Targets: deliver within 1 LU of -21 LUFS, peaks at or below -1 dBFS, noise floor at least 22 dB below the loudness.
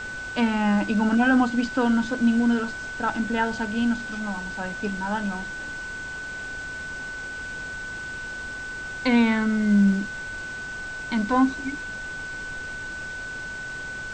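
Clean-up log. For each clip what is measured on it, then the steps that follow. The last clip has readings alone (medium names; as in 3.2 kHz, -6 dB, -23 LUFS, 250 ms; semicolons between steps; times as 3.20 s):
steady tone 1.5 kHz; tone level -32 dBFS; noise floor -34 dBFS; noise floor target -48 dBFS; loudness -25.5 LUFS; peak level -8.5 dBFS; loudness target -21.0 LUFS
-> band-stop 1.5 kHz, Q 30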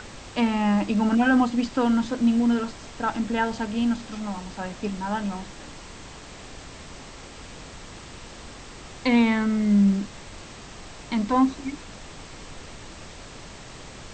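steady tone not found; noise floor -43 dBFS; noise floor target -46 dBFS
-> noise print and reduce 6 dB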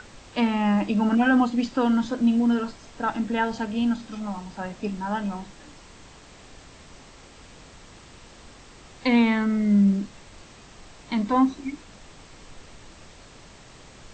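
noise floor -49 dBFS; loudness -24.0 LUFS; peak level -9.0 dBFS; loudness target -21.0 LUFS
-> trim +3 dB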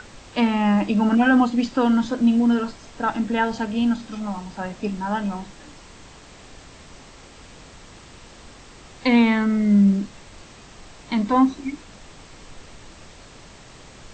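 loudness -21.0 LUFS; peak level -6.0 dBFS; noise floor -46 dBFS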